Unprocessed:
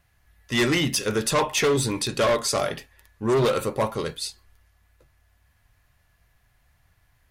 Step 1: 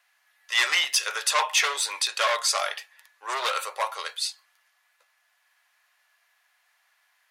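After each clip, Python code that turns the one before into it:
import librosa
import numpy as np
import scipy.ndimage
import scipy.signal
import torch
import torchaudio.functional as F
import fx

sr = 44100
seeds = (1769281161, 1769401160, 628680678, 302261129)

y = scipy.signal.sosfilt(scipy.signal.bessel(6, 1100.0, 'highpass', norm='mag', fs=sr, output='sos'), x)
y = fx.high_shelf(y, sr, hz=10000.0, db=-8.5)
y = y * 10.0 ** (4.5 / 20.0)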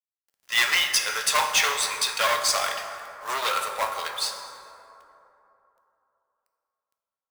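y = fx.quant_companded(x, sr, bits=4)
y = fx.rev_plate(y, sr, seeds[0], rt60_s=3.1, hf_ratio=0.4, predelay_ms=0, drr_db=4.5)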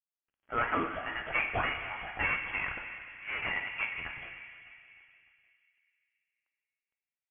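y = fx.freq_invert(x, sr, carrier_hz=3300)
y = fx.echo_feedback(y, sr, ms=303, feedback_pct=53, wet_db=-19.0)
y = y * 10.0 ** (-7.5 / 20.0)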